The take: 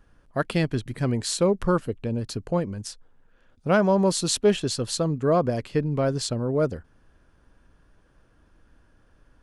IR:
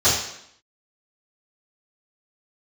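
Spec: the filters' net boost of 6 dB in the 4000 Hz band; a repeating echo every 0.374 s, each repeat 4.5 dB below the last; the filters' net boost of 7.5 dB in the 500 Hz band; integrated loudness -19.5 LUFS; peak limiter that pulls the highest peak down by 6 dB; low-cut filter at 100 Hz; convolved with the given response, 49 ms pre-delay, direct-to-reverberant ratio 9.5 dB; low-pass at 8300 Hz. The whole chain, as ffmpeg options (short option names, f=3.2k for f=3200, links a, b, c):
-filter_complex "[0:a]highpass=100,lowpass=8.3k,equalizer=f=500:t=o:g=9,equalizer=f=4k:t=o:g=7,alimiter=limit=-9.5dB:level=0:latency=1,aecho=1:1:374|748|1122|1496|1870|2244|2618|2992|3366:0.596|0.357|0.214|0.129|0.0772|0.0463|0.0278|0.0167|0.01,asplit=2[a][b];[1:a]atrim=start_sample=2205,adelay=49[c];[b][c]afir=irnorm=-1:irlink=0,volume=-29dB[d];[a][d]amix=inputs=2:normalize=0,volume=0.5dB"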